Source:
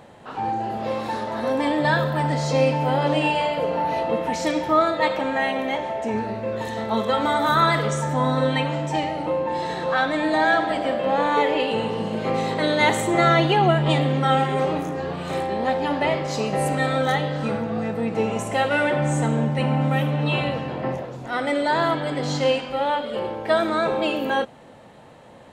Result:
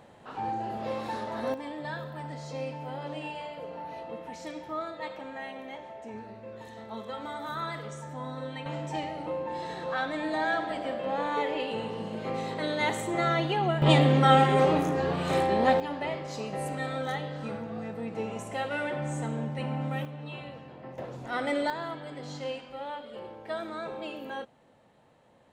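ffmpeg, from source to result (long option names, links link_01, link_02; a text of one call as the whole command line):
ffmpeg -i in.wav -af "asetnsamples=nb_out_samples=441:pad=0,asendcmd='1.54 volume volume -16.5dB;8.66 volume volume -9.5dB;13.82 volume volume 0dB;15.8 volume volume -11dB;20.05 volume volume -18dB;20.98 volume volume -6dB;21.7 volume volume -15dB',volume=-7dB" out.wav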